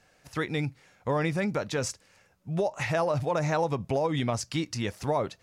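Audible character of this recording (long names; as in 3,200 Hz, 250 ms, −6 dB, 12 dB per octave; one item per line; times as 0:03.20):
background noise floor −64 dBFS
spectral slope −5.5 dB per octave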